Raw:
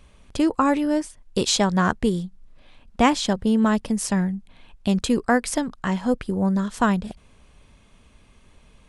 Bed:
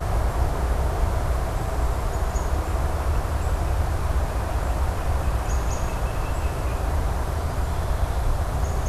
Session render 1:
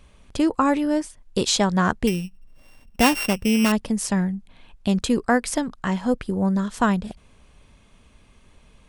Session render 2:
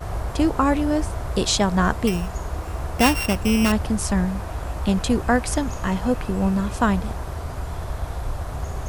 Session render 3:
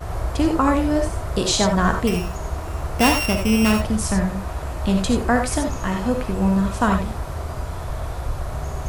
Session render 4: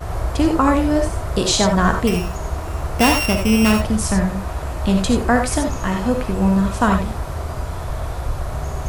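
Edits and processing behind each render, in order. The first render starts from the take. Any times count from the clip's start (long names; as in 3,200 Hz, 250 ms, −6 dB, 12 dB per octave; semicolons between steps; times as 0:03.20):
0:02.07–0:03.72: samples sorted by size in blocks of 16 samples
mix in bed −4.5 dB
reverb whose tail is shaped and stops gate 110 ms rising, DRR 3.5 dB
level +2.5 dB; brickwall limiter −2 dBFS, peak gain reduction 2 dB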